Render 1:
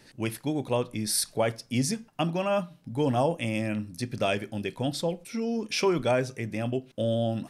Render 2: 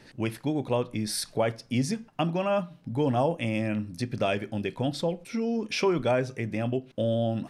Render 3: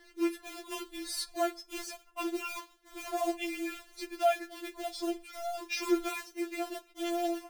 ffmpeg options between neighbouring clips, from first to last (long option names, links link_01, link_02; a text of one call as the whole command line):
ffmpeg -i in.wav -filter_complex "[0:a]highshelf=frequency=5900:gain=-11.5,asplit=2[link_01][link_02];[link_02]acompressor=threshold=-33dB:ratio=6,volume=-0.5dB[link_03];[link_01][link_03]amix=inputs=2:normalize=0,volume=-2dB" out.wav
ffmpeg -i in.wav -af "acrusher=bits=3:mode=log:mix=0:aa=0.000001,afftfilt=real='re*4*eq(mod(b,16),0)':imag='im*4*eq(mod(b,16),0)':win_size=2048:overlap=0.75,volume=-2.5dB" out.wav